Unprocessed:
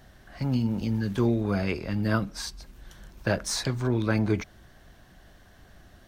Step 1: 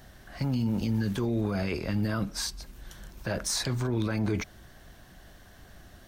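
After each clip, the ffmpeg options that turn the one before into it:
ffmpeg -i in.wav -af "highshelf=frequency=6200:gain=5.5,alimiter=limit=-22dB:level=0:latency=1:release=18,volume=1.5dB" out.wav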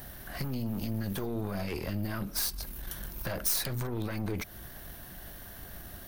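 ffmpeg -i in.wav -af "acompressor=threshold=-35dB:ratio=3,aeval=exprs='0.0596*(cos(1*acos(clip(val(0)/0.0596,-1,1)))-cos(1*PI/2))+0.0119*(cos(4*acos(clip(val(0)/0.0596,-1,1)))-cos(4*PI/2))+0.0075*(cos(5*acos(clip(val(0)/0.0596,-1,1)))-cos(5*PI/2))':channel_layout=same,aexciter=amount=6.2:drive=3.5:freq=10000" out.wav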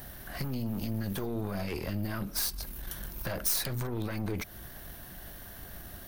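ffmpeg -i in.wav -af anull out.wav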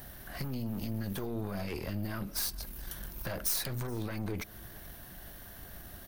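ffmpeg -i in.wav -af "aecho=1:1:426:0.0668,volume=-2.5dB" out.wav

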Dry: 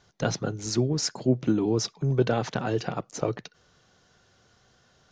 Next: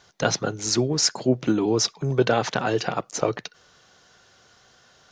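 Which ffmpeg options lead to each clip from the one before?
ffmpeg -i in.wav -af "lowshelf=frequency=350:gain=-10,volume=8dB" out.wav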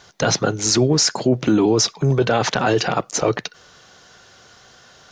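ffmpeg -i in.wav -af "alimiter=limit=-15.5dB:level=0:latency=1:release=14,volume=8dB" out.wav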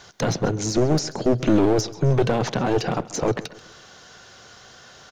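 ffmpeg -i in.wav -filter_complex "[0:a]acrossover=split=580[link_01][link_02];[link_02]acompressor=threshold=-31dB:ratio=5[link_03];[link_01][link_03]amix=inputs=2:normalize=0,aeval=exprs='clip(val(0),-1,0.0841)':channel_layout=same,aecho=1:1:135|270|405|540:0.119|0.0523|0.023|0.0101,volume=1.5dB" out.wav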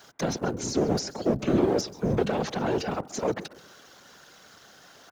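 ffmpeg -i in.wav -filter_complex "[0:a]afftfilt=real='hypot(re,im)*cos(2*PI*random(0))':imag='hypot(re,im)*sin(2*PI*random(1))':win_size=512:overlap=0.75,acrossover=split=110|2000[link_01][link_02][link_03];[link_01]aeval=exprs='val(0)*sin(2*PI*160*n/s)':channel_layout=same[link_04];[link_03]aeval=exprs='val(0)*gte(abs(val(0)),0.00119)':channel_layout=same[link_05];[link_04][link_02][link_05]amix=inputs=3:normalize=0,volume=1dB" out.wav

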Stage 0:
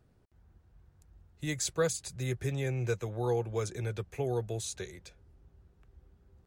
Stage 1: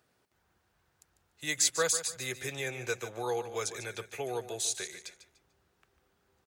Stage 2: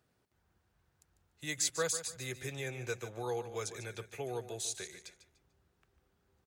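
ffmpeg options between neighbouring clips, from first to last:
ffmpeg -i in.wav -filter_complex "[0:a]highpass=frequency=1400:poles=1,asplit=2[link_01][link_02];[link_02]aecho=0:1:147|294|441:0.251|0.0728|0.0211[link_03];[link_01][link_03]amix=inputs=2:normalize=0,volume=7.5dB" out.wav
ffmpeg -i in.wav -af "lowshelf=frequency=260:gain=9,volume=-6dB" out.wav

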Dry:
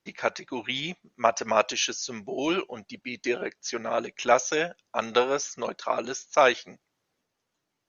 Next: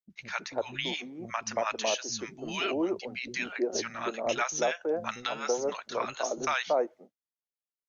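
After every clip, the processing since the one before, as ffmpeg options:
ffmpeg -i in.wav -filter_complex "[0:a]acrossover=split=220|900[link_01][link_02][link_03];[link_03]adelay=100[link_04];[link_02]adelay=330[link_05];[link_01][link_05][link_04]amix=inputs=3:normalize=0,agate=range=-33dB:threshold=-42dB:ratio=3:detection=peak,alimiter=limit=-17.5dB:level=0:latency=1:release=267" out.wav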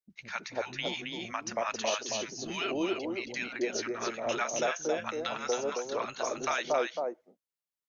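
ffmpeg -i in.wav -af "aecho=1:1:271:0.596,volume=-2.5dB" out.wav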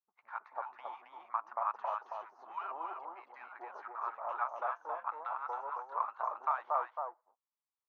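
ffmpeg -i in.wav -af "aeval=exprs='if(lt(val(0),0),0.447*val(0),val(0))':channel_layout=same,asuperpass=centerf=1000:order=4:qfactor=2.4,volume=6.5dB" out.wav

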